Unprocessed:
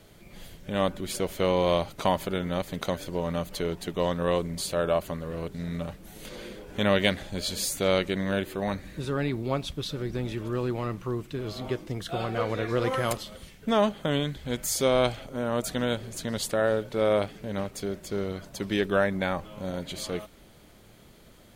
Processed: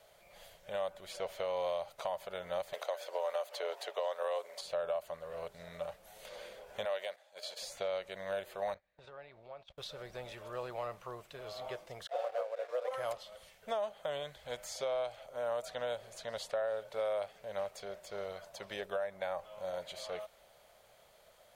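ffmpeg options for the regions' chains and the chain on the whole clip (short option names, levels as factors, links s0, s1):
-filter_complex "[0:a]asettb=1/sr,asplit=3[s0][s1][s2];[s0]atrim=end=2.734[s3];[s1]atrim=start=2.73:end=4.61,asetpts=PTS-STARTPTS,afade=t=in:d=0.004:c=qsin,afade=t=out:st=1.876:d=0.004:c=qsin,highpass=f=410:w=0.5412,highpass=f=410:w=1.3066,acontrast=84[s4];[s2]atrim=start=4.606[s5];[s3][s4]acrossfade=d=0.004:c1=hsin:c2=qsin[s6];[s6][s5]acrossfade=d=0.004:c1=qsin:c2=hsin,asettb=1/sr,asplit=3[s7][s8][s9];[s7]atrim=end=6.854[s10];[s8]atrim=start=6.85:end=7.62,asetpts=PTS-STARTPTS,afade=t=in:d=0.004:c=qsin,afade=t=out:st=0.766:d=0.004:c=qsin,highpass=460,agate=range=0.282:threshold=0.0112:ratio=16:release=100:detection=peak[s11];[s9]atrim=start=7.616[s12];[s10][s11]acrossfade=d=0.004:c1=hsin:c2=qsin[s13];[s13][s12]acrossfade=d=0.004:c1=qsin:c2=hsin,asettb=1/sr,asplit=3[s14][s15][s16];[s14]atrim=end=8.744[s17];[s15]atrim=start=8.74:end=9.78,asetpts=PTS-STARTPTS,afade=t=in:d=0.004:c=qsin,afade=t=out:st=1.036:d=0.004:c=qsin,lowpass=3700,agate=range=0.0631:threshold=0.0158:ratio=16:release=100:detection=peak,acompressor=threshold=0.0158:ratio=16:attack=3.2:release=140:knee=1:detection=peak[s18];[s16]atrim=start=9.776[s19];[s17][s18]acrossfade=d=0.004:c1=hsin:c2=qsin[s20];[s20][s19]acrossfade=d=0.004:c1=qsin:c2=hsin,asettb=1/sr,asplit=3[s21][s22][s23];[s21]atrim=end=12.074[s24];[s22]atrim=start=12.07:end=12.91,asetpts=PTS-STARTPTS,afade=t=in:d=0.004:c=qsin,afade=t=out:st=0.836:d=0.004:c=qsin,agate=range=0.447:threshold=0.0501:ratio=16:release=100:detection=peak,highpass=f=530:t=q:w=4.8,aeval=exprs='sgn(val(0))*max(abs(val(0))-0.0075,0)':c=same[s25];[s23]atrim=start=12.906[s26];[s24][s25]acrossfade=d=0.004:c1=hsin:c2=qsin[s27];[s27][s26]acrossfade=d=0.004:c1=qsin:c2=hsin,lowshelf=f=420:t=q:w=3:g=-12.5,alimiter=limit=0.158:level=0:latency=1:release=452,acrossover=split=890|6000[s28][s29][s30];[s28]acompressor=threshold=0.0501:ratio=4[s31];[s29]acompressor=threshold=0.0178:ratio=4[s32];[s30]acompressor=threshold=0.00251:ratio=4[s33];[s31][s32][s33]amix=inputs=3:normalize=0,volume=0.422"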